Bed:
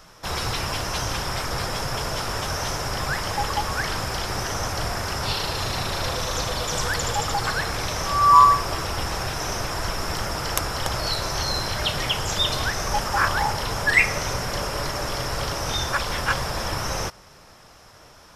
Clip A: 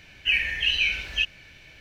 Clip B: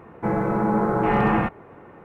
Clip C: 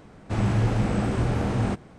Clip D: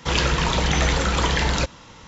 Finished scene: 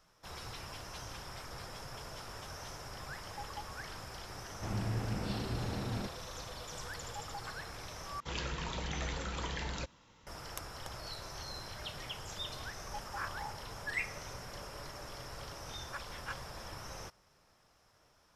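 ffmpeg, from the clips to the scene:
-filter_complex "[0:a]volume=0.112,asplit=2[s0][s1];[s0]atrim=end=8.204[s2];[4:a]atrim=end=2.07,asetpts=PTS-STARTPTS,volume=0.126[s3];[s1]atrim=start=10.266[s4];[3:a]atrim=end=1.98,asetpts=PTS-STARTPTS,volume=0.211,afade=t=in:d=0.004:c=hsin,afade=t=out:st=1.976:d=0.004:c=hsin,adelay=4320[s5];[s2][s3]acrossfade=d=0.004:c1=hsin:c2=hsin[s6];[s6][s4]acrossfade=d=0.004:c1=hsin:c2=hsin[s7];[s7][s5]amix=inputs=2:normalize=0"

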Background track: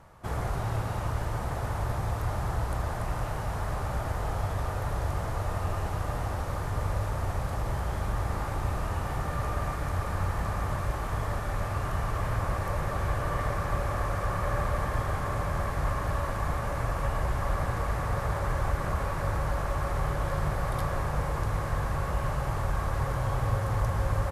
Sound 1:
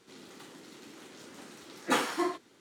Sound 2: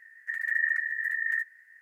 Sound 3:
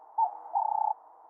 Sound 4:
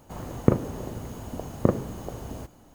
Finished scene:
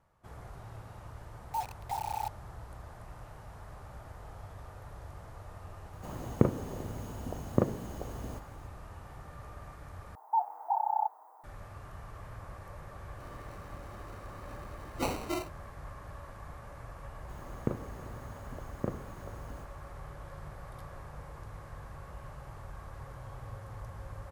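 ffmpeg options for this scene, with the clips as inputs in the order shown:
-filter_complex "[3:a]asplit=2[s0][s1];[4:a]asplit=2[s2][s3];[0:a]volume=0.15[s4];[s0]acrusher=bits=5:mix=0:aa=0.000001[s5];[s1]aemphasis=mode=production:type=riaa[s6];[1:a]acrusher=samples=26:mix=1:aa=0.000001[s7];[s4]asplit=2[s8][s9];[s8]atrim=end=10.154[s10];[s6]atrim=end=1.29,asetpts=PTS-STARTPTS,volume=0.891[s11];[s9]atrim=start=11.436[s12];[s5]atrim=end=1.29,asetpts=PTS-STARTPTS,volume=0.422,afade=t=in:d=0.004:c=hsin,afade=t=out:st=1.286:d=0.004:c=hsin,adelay=1360[s13];[s2]atrim=end=2.74,asetpts=PTS-STARTPTS,volume=0.562,afade=t=in:d=0.004:c=hsin,afade=t=out:st=2.736:d=0.004:c=hsin,adelay=261513S[s14];[s7]atrim=end=2.6,asetpts=PTS-STARTPTS,volume=0.596,afade=t=in:d=0.004:c=hsin,afade=t=out:st=2.596:d=0.004:c=hsin,adelay=13110[s15];[s3]atrim=end=2.74,asetpts=PTS-STARTPTS,volume=0.224,afade=t=in:d=0.004:c=hsin,afade=t=out:st=2.736:d=0.004:c=hsin,adelay=17190[s16];[s10][s11]acrossfade=d=0.004:c1=hsin:c2=hsin[s17];[s17][s12]acrossfade=d=0.004:c1=hsin:c2=hsin[s18];[s18][s13][s14][s15][s16]amix=inputs=5:normalize=0"

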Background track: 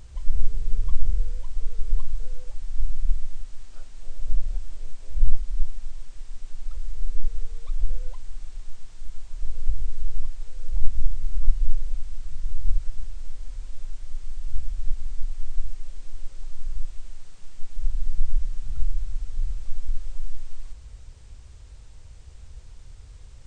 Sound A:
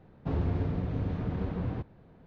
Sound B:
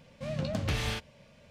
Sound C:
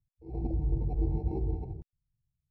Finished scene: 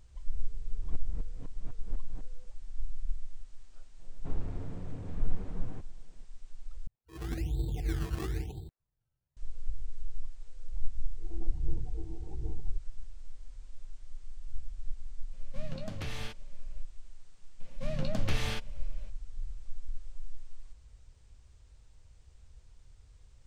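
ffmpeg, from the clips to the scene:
-filter_complex "[1:a]asplit=2[s0][s1];[3:a]asplit=2[s2][s3];[2:a]asplit=2[s4][s5];[0:a]volume=0.251[s6];[s0]aeval=exprs='val(0)*pow(10,-34*if(lt(mod(-4*n/s,1),2*abs(-4)/1000),1-mod(-4*n/s,1)/(2*abs(-4)/1000),(mod(-4*n/s,1)-2*abs(-4)/1000)/(1-2*abs(-4)/1000))/20)':c=same[s7];[s1]asoftclip=type=hard:threshold=0.0447[s8];[s2]acrusher=samples=21:mix=1:aa=0.000001:lfo=1:lforange=21:lforate=1[s9];[s3]aphaser=in_gain=1:out_gain=1:delay=3.1:decay=0.52:speed=1.3:type=sinusoidal[s10];[s6]asplit=2[s11][s12];[s11]atrim=end=6.874[s13];[s9]atrim=end=2.5,asetpts=PTS-STARTPTS,volume=0.708[s14];[s12]atrim=start=9.366[s15];[s7]atrim=end=2.26,asetpts=PTS-STARTPTS,volume=0.266,afade=t=in:d=0.004:c=hsin,afade=t=out:st=2.256:d=0.004:c=hsin,adelay=460[s16];[s8]atrim=end=2.26,asetpts=PTS-STARTPTS,volume=0.316,afade=t=in:d=0.004:c=hsin,afade=t=out:st=2.256:d=0.004:c=hsin,adelay=3990[s17];[s10]atrim=end=2.5,asetpts=PTS-STARTPTS,volume=0.211,afade=t=in:d=0.004:c=hsin,afade=t=out:st=2.496:d=0.004:c=hsin,adelay=10960[s18];[s4]atrim=end=1.5,asetpts=PTS-STARTPTS,volume=0.376,afade=t=in:d=0.004:c=hsin,afade=t=out:st=1.496:d=0.004:c=hsin,adelay=15330[s19];[s5]atrim=end=1.5,asetpts=PTS-STARTPTS,volume=0.75,afade=t=in:d=0.004:c=hsin,afade=t=out:st=1.496:d=0.004:c=hsin,adelay=17600[s20];[s13][s14]acrossfade=d=0.004:c1=hsin:c2=hsin[s21];[s21][s15]acrossfade=d=0.004:c1=hsin:c2=hsin[s22];[s22][s16][s17][s18][s19][s20]amix=inputs=6:normalize=0"

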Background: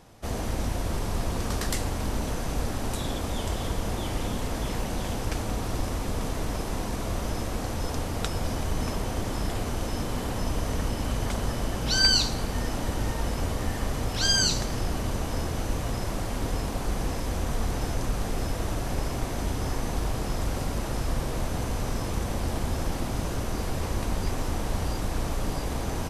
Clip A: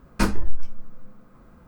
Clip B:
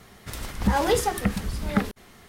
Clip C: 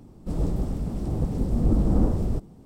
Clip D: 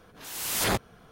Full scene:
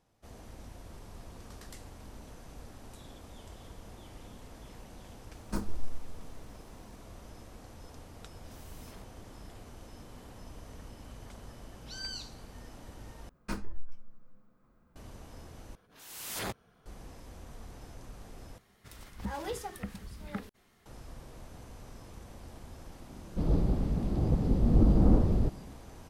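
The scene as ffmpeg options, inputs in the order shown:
-filter_complex "[1:a]asplit=2[s0][s1];[4:a]asplit=2[s2][s3];[0:a]volume=0.106[s4];[s0]equalizer=f=2400:w=0.82:g=-12[s5];[s2]acompressor=threshold=0.0112:ratio=6:attack=3.2:release=140:knee=1:detection=peak[s6];[3:a]aresample=11025,aresample=44100[s7];[s4]asplit=4[s8][s9][s10][s11];[s8]atrim=end=13.294[s12];[s1]atrim=end=1.67,asetpts=PTS-STARTPTS,volume=0.168[s13];[s9]atrim=start=14.956:end=15.754[s14];[s3]atrim=end=1.11,asetpts=PTS-STARTPTS,volume=0.282[s15];[s10]atrim=start=16.856:end=18.584[s16];[2:a]atrim=end=2.28,asetpts=PTS-STARTPTS,volume=0.168[s17];[s11]atrim=start=20.856[s18];[s5]atrim=end=1.67,asetpts=PTS-STARTPTS,volume=0.251,afade=t=in:d=0.004:c=hsin,afade=t=out:st=1.666:d=0.004:c=hsin,adelay=235053S[s19];[s6]atrim=end=1.11,asetpts=PTS-STARTPTS,volume=0.141,afade=t=in:d=0.004:c=hsin,afade=t=out:st=1.106:d=0.004:c=hsin,adelay=8270[s20];[s7]atrim=end=2.65,asetpts=PTS-STARTPTS,volume=0.841,afade=t=in:d=0.004:c=hsin,afade=t=out:st=2.646:d=0.004:c=hsin,adelay=23100[s21];[s12][s13]acrossfade=d=0.004:c1=hsin:c2=hsin[s22];[s22][s14]acrossfade=d=0.004:c1=hsin:c2=hsin[s23];[s23][s15]acrossfade=d=0.004:c1=hsin:c2=hsin[s24];[s24][s16]acrossfade=d=0.004:c1=hsin:c2=hsin[s25];[s25][s17]acrossfade=d=0.004:c1=hsin:c2=hsin[s26];[s26][s18]acrossfade=d=0.004:c1=hsin:c2=hsin[s27];[s27][s19][s20][s21]amix=inputs=4:normalize=0"

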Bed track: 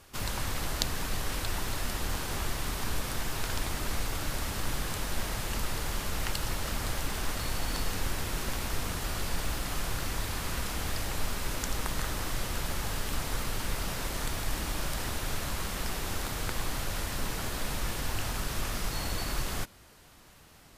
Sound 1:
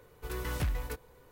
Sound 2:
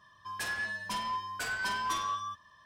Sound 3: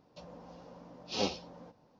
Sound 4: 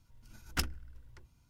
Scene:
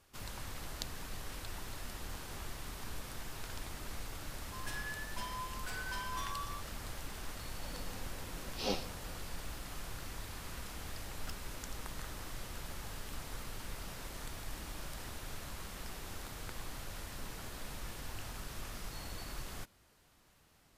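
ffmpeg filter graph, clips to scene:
-filter_complex "[0:a]volume=0.266[s0];[2:a]atrim=end=2.65,asetpts=PTS-STARTPTS,volume=0.355,afade=t=in:d=0.004:c=hsin,afade=t=out:st=2.646:d=0.004:c=hsin,adelay=4270[s1];[3:a]atrim=end=1.99,asetpts=PTS-STARTPTS,volume=0.668,afade=t=in:d=0.004:c=hsin,afade=t=out:st=1.986:d=0.004:c=hsin,adelay=7470[s2];[4:a]atrim=end=1.49,asetpts=PTS-STARTPTS,volume=0.15,afade=t=in:d=0.004:c=hsin,afade=t=out:st=1.486:d=0.004:c=hsin,adelay=10700[s3];[s0][s1][s2][s3]amix=inputs=4:normalize=0"

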